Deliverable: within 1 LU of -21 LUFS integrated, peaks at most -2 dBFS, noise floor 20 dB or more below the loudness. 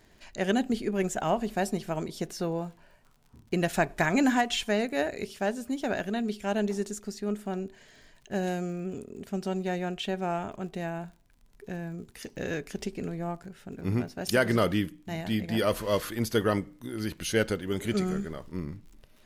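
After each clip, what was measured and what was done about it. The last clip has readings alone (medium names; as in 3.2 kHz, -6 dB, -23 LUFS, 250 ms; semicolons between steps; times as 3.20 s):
tick rate 44 per s; loudness -30.5 LUFS; peak level -12.0 dBFS; loudness target -21.0 LUFS
-> de-click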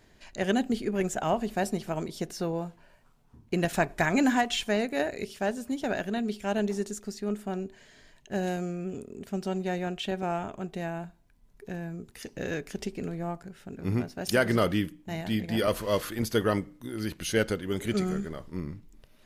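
tick rate 0 per s; loudness -30.5 LUFS; peak level -12.0 dBFS; loudness target -21.0 LUFS
-> trim +9.5 dB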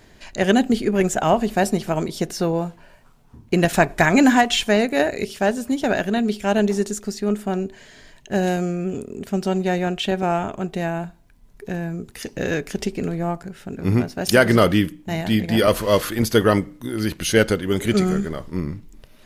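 loudness -21.0 LUFS; peak level -2.5 dBFS; noise floor -51 dBFS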